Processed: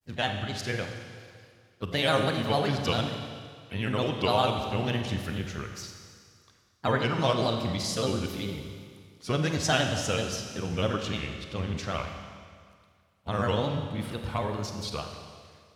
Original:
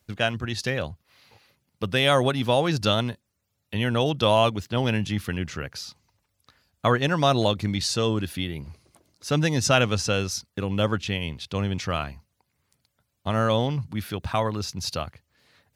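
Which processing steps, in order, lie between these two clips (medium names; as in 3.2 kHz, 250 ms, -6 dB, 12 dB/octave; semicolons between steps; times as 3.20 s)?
granulator, spray 17 ms, pitch spread up and down by 3 st; Schroeder reverb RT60 2 s, combs from 31 ms, DRR 4.5 dB; harmony voices +3 st -15 dB; trim -4.5 dB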